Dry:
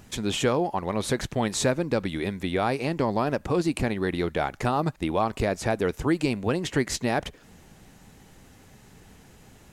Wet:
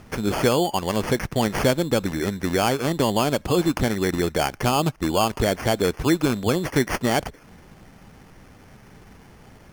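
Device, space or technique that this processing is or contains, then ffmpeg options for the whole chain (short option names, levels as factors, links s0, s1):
crushed at another speed: -af "asetrate=22050,aresample=44100,acrusher=samples=23:mix=1:aa=0.000001,asetrate=88200,aresample=44100,volume=1.58"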